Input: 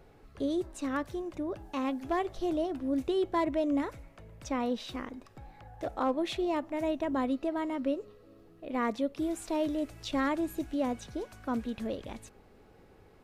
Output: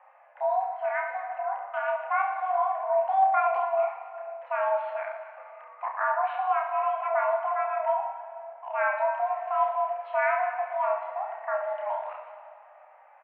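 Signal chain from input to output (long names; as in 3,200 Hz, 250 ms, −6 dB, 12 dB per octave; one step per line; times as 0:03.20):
single-sideband voice off tune +390 Hz 180–2,000 Hz
0:03.53–0:04.43: flanger swept by the level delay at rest 8.8 ms, full sweep at −27.5 dBFS
reverse bouncing-ball delay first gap 30 ms, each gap 1.3×, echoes 5
on a send at −8 dB: convolution reverb RT60 2.4 s, pre-delay 37 ms
on the sum: level +2 dB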